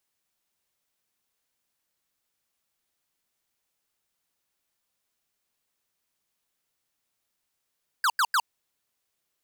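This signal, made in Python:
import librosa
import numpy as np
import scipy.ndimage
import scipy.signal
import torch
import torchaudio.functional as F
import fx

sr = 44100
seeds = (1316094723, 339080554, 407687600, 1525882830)

y = fx.laser_zaps(sr, level_db=-22.0, start_hz=1700.0, end_hz=870.0, length_s=0.06, wave='square', shots=3, gap_s=0.09)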